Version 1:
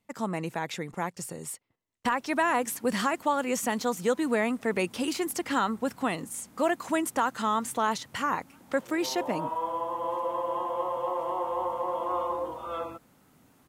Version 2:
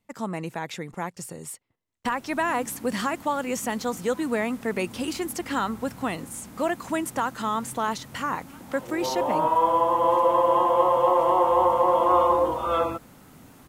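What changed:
background +10.5 dB
master: add low-shelf EQ 72 Hz +7 dB

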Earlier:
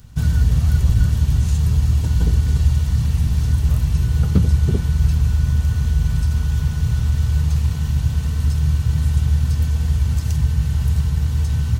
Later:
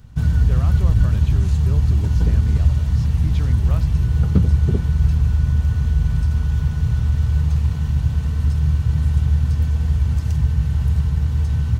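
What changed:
speech +10.0 dB
background: add high-shelf EQ 3,600 Hz −10.5 dB

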